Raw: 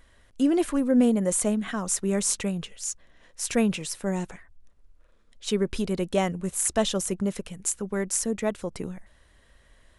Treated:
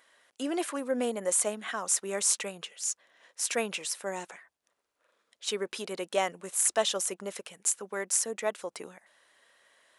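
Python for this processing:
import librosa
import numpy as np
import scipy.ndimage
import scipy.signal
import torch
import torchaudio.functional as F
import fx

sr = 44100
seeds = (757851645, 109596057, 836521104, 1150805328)

y = scipy.signal.sosfilt(scipy.signal.butter(2, 560.0, 'highpass', fs=sr, output='sos'), x)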